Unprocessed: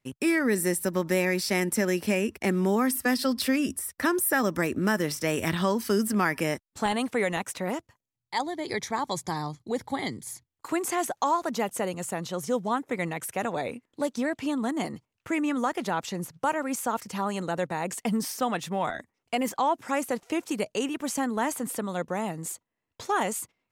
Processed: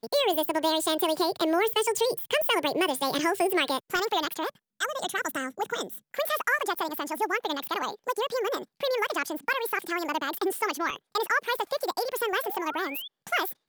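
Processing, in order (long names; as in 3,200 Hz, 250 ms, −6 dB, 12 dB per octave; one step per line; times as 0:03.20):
wrong playback speed 45 rpm record played at 78 rpm
sound drawn into the spectrogram rise, 0:12.43–0:13.08, 630–3,600 Hz −39 dBFS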